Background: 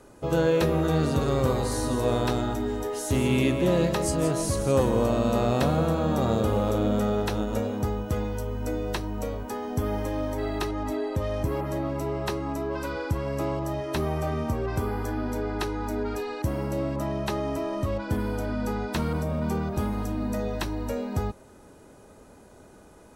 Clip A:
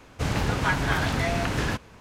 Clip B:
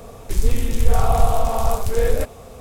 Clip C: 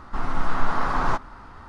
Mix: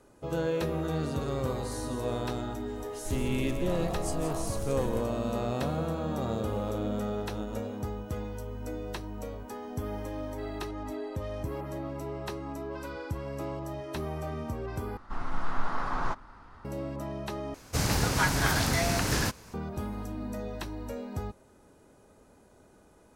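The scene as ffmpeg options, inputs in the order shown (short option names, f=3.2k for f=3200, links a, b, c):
-filter_complex "[0:a]volume=-7.5dB[a];[2:a]acompressor=threshold=-18dB:ratio=6:attack=3.2:release=140:knee=1:detection=peak[b];[1:a]aexciter=amount=1.4:drive=9.9:freq=4.4k[c];[a]asplit=3[d][e][f];[d]atrim=end=14.974[g];[3:a]atrim=end=1.68,asetpts=PTS-STARTPTS,volume=-8dB[h];[e]atrim=start=16.646:end=17.544[i];[c]atrim=end=2,asetpts=PTS-STARTPTS,volume=-2dB[j];[f]atrim=start=19.536[k];[b]atrim=end=2.6,asetpts=PTS-STARTPTS,volume=-13dB,afade=t=in:d=0.004:c=hsin,afade=t=out:st=2.596:d=0.004:c=hsin,adelay=2760[l];[g][h]acrossfade=d=0.004:c1=hsin:c2=hsin[m];[m][i]acrossfade=d=0.004:c1=hsin:c2=hsin[n];[n][j]acrossfade=d=0.004:c1=hsin:c2=hsin[o];[o][k]acrossfade=d=0.004:c1=hsin:c2=hsin[p];[p][l]amix=inputs=2:normalize=0"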